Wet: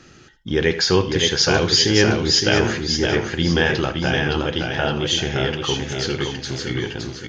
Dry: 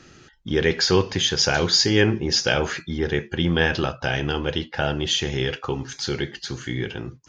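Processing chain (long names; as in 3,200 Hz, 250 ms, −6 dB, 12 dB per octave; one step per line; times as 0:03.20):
single-tap delay 82 ms −15 dB
feedback echo with a swinging delay time 567 ms, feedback 41%, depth 56 cents, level −4.5 dB
level +1.5 dB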